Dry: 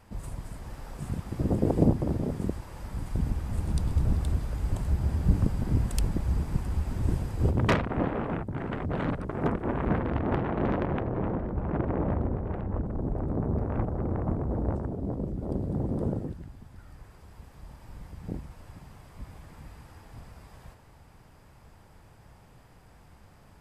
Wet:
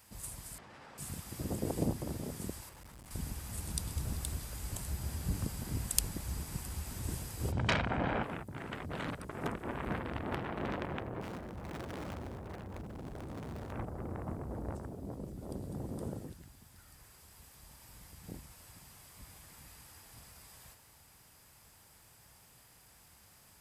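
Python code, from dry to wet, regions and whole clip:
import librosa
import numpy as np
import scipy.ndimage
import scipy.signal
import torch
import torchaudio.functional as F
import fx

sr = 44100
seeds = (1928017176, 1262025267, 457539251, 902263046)

y = fx.chain(x, sr, fx.bandpass_edges(low_hz=160.0, high_hz=2400.0),
    fx.env_flatten(amount_pct=100), at=(0.58, 0.98))
y = fx.chain(y, sr, fx.high_shelf(hz=3100.0, db=-10.0),
    fx.clip_hard(threshold_db=-38.5), at=(2.69, 3.11))
y = fx.chain(y, sr, fx.air_absorb(metres=120.0),
    fx.comb(ms=1.3, depth=0.31),
    fx.env_flatten(amount_pct=70), at=(7.52, 8.23))
y = fx.chain(y, sr, fx.highpass(hz=42.0, slope=6),
    fx.clip_hard(threshold_db=-28.5), at=(11.21, 13.72))
y = scipy.signal.sosfilt(scipy.signal.butter(2, 41.0, 'highpass', fs=sr, output='sos'), y)
y = librosa.effects.preemphasis(y, coef=0.9, zi=[0.0])
y = y * 10.0 ** (8.5 / 20.0)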